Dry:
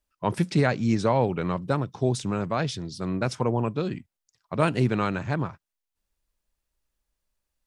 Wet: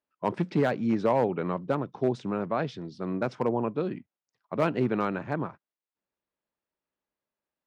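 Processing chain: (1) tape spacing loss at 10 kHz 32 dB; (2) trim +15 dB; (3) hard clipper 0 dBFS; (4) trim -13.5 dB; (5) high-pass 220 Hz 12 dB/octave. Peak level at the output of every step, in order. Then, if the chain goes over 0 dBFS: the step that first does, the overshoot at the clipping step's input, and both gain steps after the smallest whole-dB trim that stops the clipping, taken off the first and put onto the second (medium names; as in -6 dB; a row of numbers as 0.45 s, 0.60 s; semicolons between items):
-9.5 dBFS, +5.5 dBFS, 0.0 dBFS, -13.5 dBFS, -12.0 dBFS; step 2, 5.5 dB; step 2 +9 dB, step 4 -7.5 dB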